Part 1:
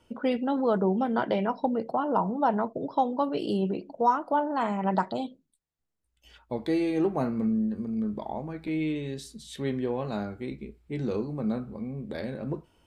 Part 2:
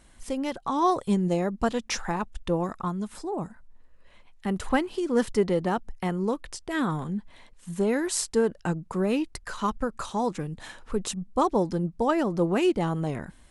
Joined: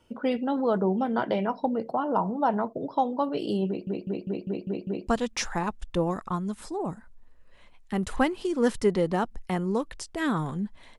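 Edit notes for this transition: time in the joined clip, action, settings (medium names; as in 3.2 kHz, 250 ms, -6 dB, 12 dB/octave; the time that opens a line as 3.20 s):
part 1
3.67 s: stutter in place 0.20 s, 7 plays
5.07 s: go over to part 2 from 1.60 s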